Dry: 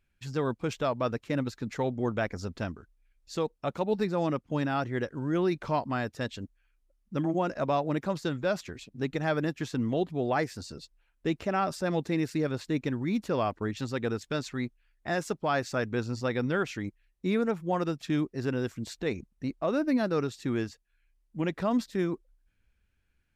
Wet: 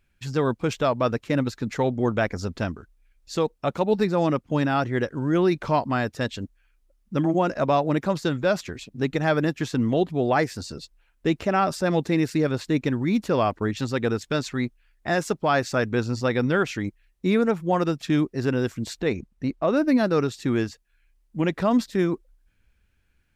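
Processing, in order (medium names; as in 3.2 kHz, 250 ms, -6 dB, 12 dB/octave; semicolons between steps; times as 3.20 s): 19.01–19.77 s: treble shelf 5.9 kHz -7 dB; trim +6.5 dB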